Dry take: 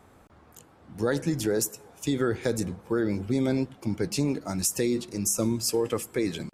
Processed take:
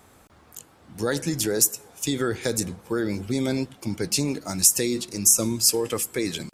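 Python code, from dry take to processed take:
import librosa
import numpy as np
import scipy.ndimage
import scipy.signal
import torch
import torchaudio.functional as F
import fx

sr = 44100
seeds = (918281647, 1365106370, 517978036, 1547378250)

y = fx.high_shelf(x, sr, hz=2700.0, db=11.0)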